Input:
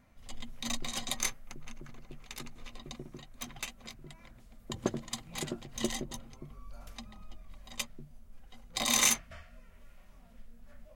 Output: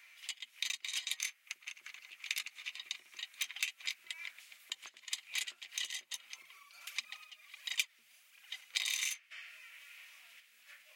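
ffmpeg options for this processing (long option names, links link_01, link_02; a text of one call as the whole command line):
ffmpeg -i in.wav -filter_complex "[0:a]acompressor=threshold=-46dB:ratio=16,asettb=1/sr,asplit=3[link_01][link_02][link_03];[link_01]atrim=end=6.384[link_04];[link_02]atrim=start=6.38:end=8.61,asetpts=PTS-STARTPTS,afade=type=in:duration=0.004:curve=qsin,afade=type=out:start_time=2.226:duration=0.004:curve=qsin,aphaser=in_gain=1:out_gain=1:delay=4.9:decay=0.56:speed=1.5:type=triangular[link_05];[link_03]atrim=start=8.606[link_06];[link_04][link_05]acrossfade=duration=0.004:curve1=hsin:curve2=qsin[link_07];[link_07][link_06]acrossfade=duration=0.004:curve1=qsin:curve2=hsin,highpass=frequency=2400:width_type=q:width=2.6,volume=10.5dB" out.wav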